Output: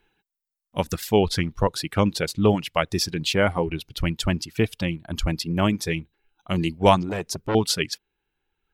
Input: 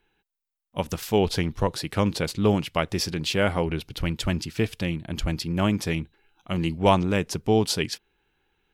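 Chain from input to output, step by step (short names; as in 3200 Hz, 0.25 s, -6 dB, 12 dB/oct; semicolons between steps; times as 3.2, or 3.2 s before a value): reverb removal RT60 1.4 s; 7.09–7.55 core saturation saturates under 1200 Hz; gain +3 dB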